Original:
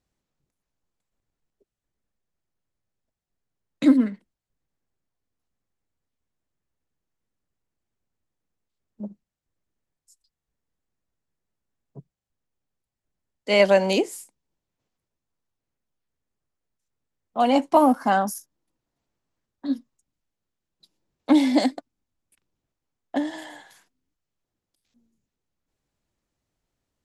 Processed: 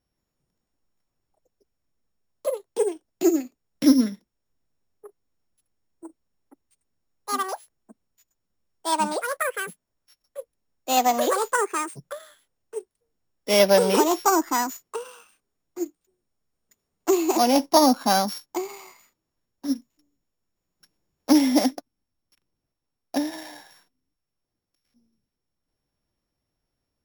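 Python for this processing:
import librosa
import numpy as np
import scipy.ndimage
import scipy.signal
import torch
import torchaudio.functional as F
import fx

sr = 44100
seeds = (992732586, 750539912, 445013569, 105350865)

y = np.r_[np.sort(x[:len(x) // 8 * 8].reshape(-1, 8), axis=1).ravel(), x[len(x) // 8 * 8:]]
y = fx.peak_eq(y, sr, hz=7700.0, db=-8.5, octaves=0.75, at=(13.59, 14.17))
y = fx.echo_pitch(y, sr, ms=179, semitones=4, count=3, db_per_echo=-3.0)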